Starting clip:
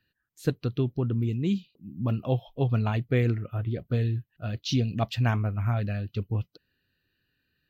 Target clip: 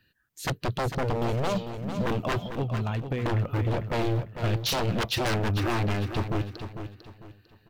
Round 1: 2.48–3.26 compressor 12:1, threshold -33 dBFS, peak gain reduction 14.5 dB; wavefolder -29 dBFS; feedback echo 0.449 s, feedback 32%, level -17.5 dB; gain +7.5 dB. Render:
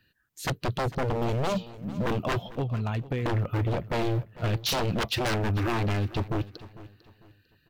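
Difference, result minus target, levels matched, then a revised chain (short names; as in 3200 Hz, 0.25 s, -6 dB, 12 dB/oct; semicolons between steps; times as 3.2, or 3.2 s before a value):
echo-to-direct -8.5 dB
2.48–3.26 compressor 12:1, threshold -33 dBFS, peak gain reduction 14.5 dB; wavefolder -29 dBFS; feedback echo 0.449 s, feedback 32%, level -9 dB; gain +7.5 dB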